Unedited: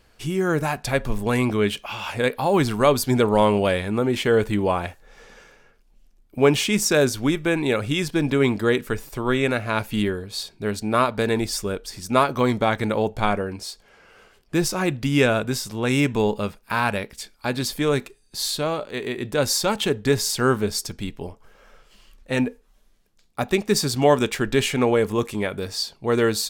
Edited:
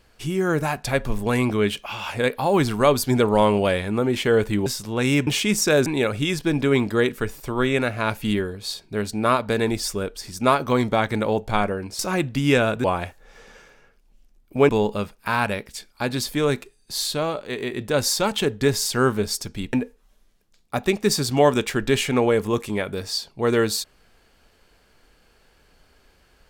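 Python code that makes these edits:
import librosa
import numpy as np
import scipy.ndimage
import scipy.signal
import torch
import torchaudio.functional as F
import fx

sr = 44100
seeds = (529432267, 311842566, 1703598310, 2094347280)

y = fx.edit(x, sr, fx.swap(start_s=4.66, length_s=1.85, other_s=15.52, other_length_s=0.61),
    fx.cut(start_s=7.1, length_s=0.45),
    fx.cut(start_s=13.68, length_s=0.99),
    fx.cut(start_s=21.17, length_s=1.21), tone=tone)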